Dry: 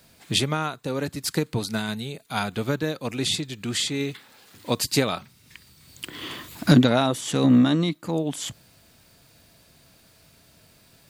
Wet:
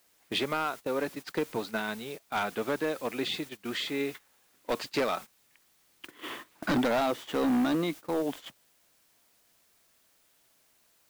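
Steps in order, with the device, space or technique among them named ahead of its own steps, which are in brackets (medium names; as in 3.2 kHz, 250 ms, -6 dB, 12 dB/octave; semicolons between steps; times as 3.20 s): aircraft radio (band-pass 340–2400 Hz; hard clipper -23 dBFS, distortion -9 dB; white noise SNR 18 dB; gate -39 dBFS, range -16 dB)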